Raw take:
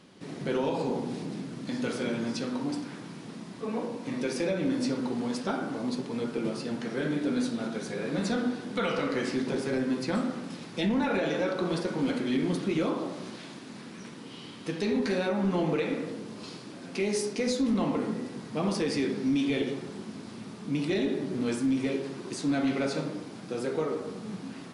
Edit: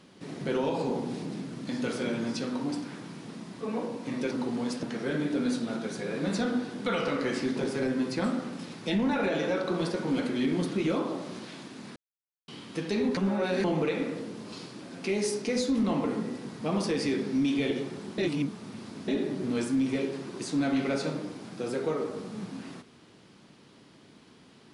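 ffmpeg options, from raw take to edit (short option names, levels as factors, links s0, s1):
-filter_complex "[0:a]asplit=9[s0][s1][s2][s3][s4][s5][s6][s7][s8];[s0]atrim=end=4.312[s9];[s1]atrim=start=4.948:end=5.472[s10];[s2]atrim=start=6.738:end=13.87,asetpts=PTS-STARTPTS,afade=t=out:st=7.128:d=0.004:c=hsin[s11];[s3]atrim=start=13.87:end=14.39,asetpts=PTS-STARTPTS,volume=0[s12];[s4]atrim=start=14.39:end=15.082,asetpts=PTS-STARTPTS,afade=t=in:d=0.004:c=hsin[s13];[s5]atrim=start=15.078:end=15.552,asetpts=PTS-STARTPTS,areverse[s14];[s6]atrim=start=15.548:end=20.092[s15];[s7]atrim=start=20.088:end=20.992,asetpts=PTS-STARTPTS,areverse[s16];[s8]atrim=start=20.988[s17];[s9][s10]acrossfade=d=0.004:c1=hsin:c2=hsin[s18];[s11][s12][s13]concat=n=3:v=0:a=1[s19];[s18][s19]acrossfade=d=0.004:c1=hsin:c2=hsin[s20];[s20][s14]acrossfade=d=0.004:c1=hsin:c2=hsin[s21];[s21][s15]acrossfade=d=0.004:c1=hsin:c2=hsin[s22];[s22][s16]acrossfade=d=0.004:c1=hsin:c2=hsin[s23];[s23][s17]acrossfade=d=0.004:c1=hsin:c2=hsin"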